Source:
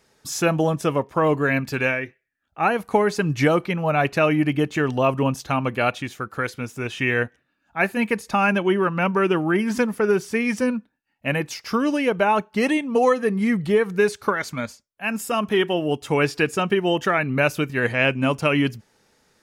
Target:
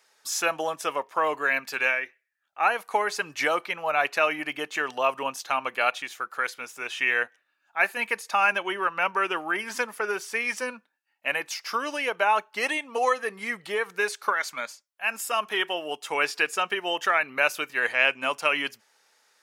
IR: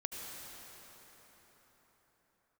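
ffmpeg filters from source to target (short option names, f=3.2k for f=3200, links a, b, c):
-af "highpass=790"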